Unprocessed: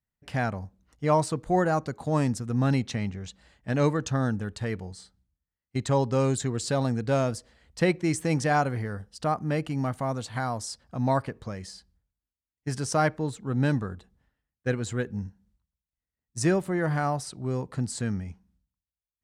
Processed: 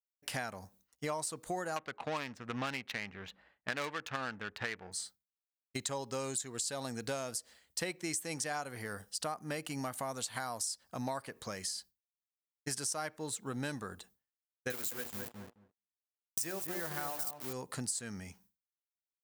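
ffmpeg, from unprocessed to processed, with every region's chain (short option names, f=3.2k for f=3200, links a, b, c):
-filter_complex "[0:a]asettb=1/sr,asplit=3[a][b][c];[a]atrim=end=1.764[d];[b]atrim=start=1.76:end=4.92,asetpts=PTS-STARTPTS,afade=t=in:d=0.004:c=qsin,afade=t=out:st=3.156:d=0.004:c=qsin,adynamicsmooth=sensitivity=4:basefreq=800,equalizer=f=2.3k:t=o:w=2.7:g=14.5[e];[c]atrim=start=4.916[f];[d][e]acrossfade=d=0.004:c1=hsin:c2=qsin[g];[g][f]acrossfade=d=0.004:c1=qsin:c2=hsin,asettb=1/sr,asplit=3[h][i][j];[h]atrim=end=14.704[k];[i]atrim=start=14.7:end=17.53,asetpts=PTS-STARTPTS,afade=t=in:d=0.004:c=qsin,afade=t=out:st=2.826:d=0.004:c=qsin,bandreject=f=60:t=h:w=6,bandreject=f=120:t=h:w=6,bandreject=f=180:t=h:w=6,bandreject=f=240:t=h:w=6,bandreject=f=300:t=h:w=6,bandreject=f=360:t=h:w=6,bandreject=f=420:t=h:w=6,bandreject=f=480:t=h:w=6,bandreject=f=540:t=h:w=6,bandreject=f=600:t=h:w=6,aeval=exprs='val(0)*gte(abs(val(0)),0.0178)':c=same,asplit=2[l][m];[m]adelay=215,lowpass=f=1.4k:p=1,volume=-7dB,asplit=2[n][o];[o]adelay=215,lowpass=f=1.4k:p=1,volume=0.16,asplit=2[p][q];[q]adelay=215,lowpass=f=1.4k:p=1,volume=0.16[r];[l][n][p][r]amix=inputs=4:normalize=0,atrim=end_sample=124803[s];[j]atrim=start=17.526[t];[k][s]acrossfade=d=0.004:c1=hsin:c2=qsin[u];[u][t]acrossfade=d=0.004:c1=qsin:c2=hsin,agate=range=-33dB:threshold=-52dB:ratio=3:detection=peak,aemphasis=mode=production:type=riaa,acompressor=threshold=-35dB:ratio=6"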